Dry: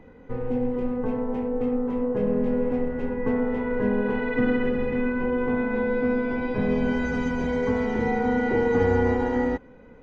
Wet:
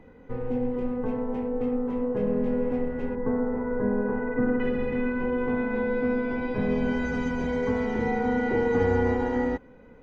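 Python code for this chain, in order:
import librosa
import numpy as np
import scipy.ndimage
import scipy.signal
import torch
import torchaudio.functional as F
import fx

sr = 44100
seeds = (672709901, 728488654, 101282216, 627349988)

y = fx.lowpass(x, sr, hz=1600.0, slope=24, at=(3.15, 4.6))
y = y * librosa.db_to_amplitude(-2.0)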